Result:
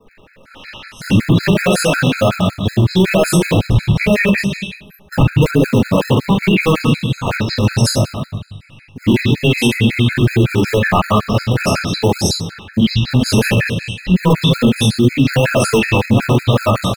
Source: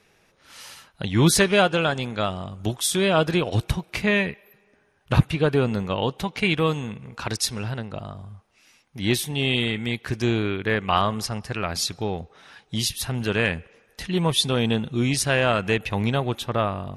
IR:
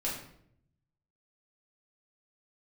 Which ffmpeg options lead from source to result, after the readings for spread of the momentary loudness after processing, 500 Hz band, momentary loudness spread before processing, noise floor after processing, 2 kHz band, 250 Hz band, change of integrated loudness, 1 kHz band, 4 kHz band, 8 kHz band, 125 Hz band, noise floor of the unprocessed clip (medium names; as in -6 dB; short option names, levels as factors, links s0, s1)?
7 LU, +7.5 dB, 12 LU, -45 dBFS, +7.0 dB, +11.5 dB, +9.0 dB, +6.5 dB, +6.0 dB, +4.0 dB, +12.0 dB, -62 dBFS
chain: -filter_complex "[0:a]aeval=exprs='0.668*(cos(1*acos(clip(val(0)/0.668,-1,1)))-cos(1*PI/2))+0.075*(cos(5*acos(clip(val(0)/0.668,-1,1)))-cos(5*PI/2))':c=same,highshelf=f=6900:g=-7,bandreject=f=750:w=12,acrossover=split=1200|3700[s0][s1][s2];[s1]adelay=60[s3];[s2]adelay=430[s4];[s0][s3][s4]amix=inputs=3:normalize=0[s5];[1:a]atrim=start_sample=2205[s6];[s5][s6]afir=irnorm=-1:irlink=0,acrossover=split=390|550|3700[s7][s8][s9][s10];[s8]acrusher=samples=27:mix=1:aa=0.000001:lfo=1:lforange=16.2:lforate=2.1[s11];[s7][s11][s9][s10]amix=inputs=4:normalize=0,alimiter=level_in=3.76:limit=0.891:release=50:level=0:latency=1,afftfilt=real='re*gt(sin(2*PI*5.4*pts/sr)*(1-2*mod(floor(b*sr/1024/1300),2)),0)':imag='im*gt(sin(2*PI*5.4*pts/sr)*(1-2*mod(floor(b*sr/1024/1300),2)),0)':win_size=1024:overlap=0.75,volume=0.841"